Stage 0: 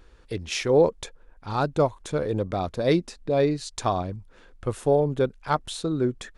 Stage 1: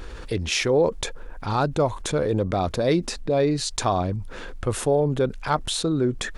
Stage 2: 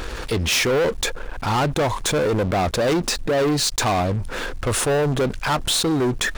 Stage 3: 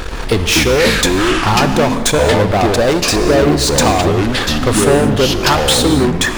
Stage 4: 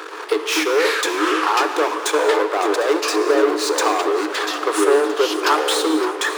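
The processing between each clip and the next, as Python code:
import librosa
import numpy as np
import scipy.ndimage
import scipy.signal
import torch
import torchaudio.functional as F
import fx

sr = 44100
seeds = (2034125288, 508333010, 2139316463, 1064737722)

y1 = fx.env_flatten(x, sr, amount_pct=50)
y1 = y1 * librosa.db_to_amplitude(-2.0)
y2 = fx.low_shelf(y1, sr, hz=350.0, db=-5.5)
y2 = fx.leveller(y2, sr, passes=5)
y2 = y2 * librosa.db_to_amplitude(-7.0)
y3 = fx.transient(y2, sr, attack_db=6, sustain_db=-7)
y3 = fx.rev_gated(y3, sr, seeds[0], gate_ms=270, shape='flat', drr_db=9.0)
y3 = fx.echo_pitch(y3, sr, ms=115, semitones=-6, count=2, db_per_echo=-3.0)
y3 = y3 * librosa.db_to_amplitude(5.0)
y4 = scipy.signal.sosfilt(scipy.signal.cheby1(6, 9, 300.0, 'highpass', fs=sr, output='sos'), y3)
y4 = fx.echo_swing(y4, sr, ms=751, ratio=3, feedback_pct=42, wet_db=-14)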